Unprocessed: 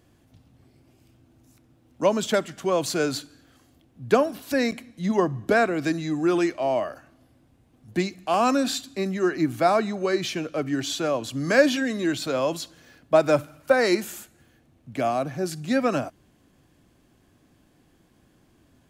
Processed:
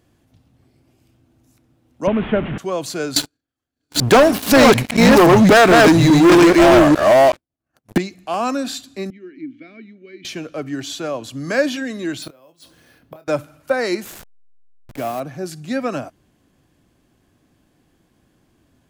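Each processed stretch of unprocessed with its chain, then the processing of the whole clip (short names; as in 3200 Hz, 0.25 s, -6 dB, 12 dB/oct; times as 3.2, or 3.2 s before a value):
2.07–2.58 delta modulation 16 kbps, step -25.5 dBFS + low shelf 330 Hz +12 dB
3.16–7.98 reverse delay 0.421 s, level -1.5 dB + expander -45 dBFS + sample leveller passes 5
9.1–10.25 vowel filter i + air absorption 140 m
12.22–13.28 careless resampling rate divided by 3×, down filtered, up hold + flipped gate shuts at -22 dBFS, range -26 dB + doubler 26 ms -10 dB
14.05–15.2 level-crossing sampler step -32.5 dBFS + bell 13000 Hz +6 dB 0.23 oct
whole clip: dry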